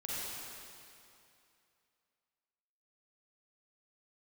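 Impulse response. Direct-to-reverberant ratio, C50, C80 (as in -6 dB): -8.0 dB, -6.5 dB, -4.0 dB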